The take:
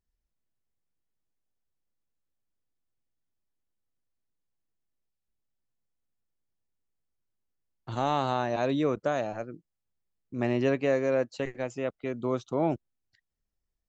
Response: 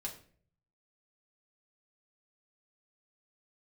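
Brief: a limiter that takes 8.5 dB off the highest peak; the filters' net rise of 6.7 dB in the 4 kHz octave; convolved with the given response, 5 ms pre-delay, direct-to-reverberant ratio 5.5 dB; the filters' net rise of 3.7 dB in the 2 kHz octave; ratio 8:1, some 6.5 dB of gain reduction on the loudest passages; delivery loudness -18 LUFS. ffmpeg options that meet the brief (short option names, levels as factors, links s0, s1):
-filter_complex "[0:a]equalizer=f=2000:t=o:g=3,equalizer=f=4000:t=o:g=7,acompressor=threshold=0.0447:ratio=8,alimiter=level_in=1.19:limit=0.0631:level=0:latency=1,volume=0.841,asplit=2[s0][s1];[1:a]atrim=start_sample=2205,adelay=5[s2];[s1][s2]afir=irnorm=-1:irlink=0,volume=0.596[s3];[s0][s3]amix=inputs=2:normalize=0,volume=8.41"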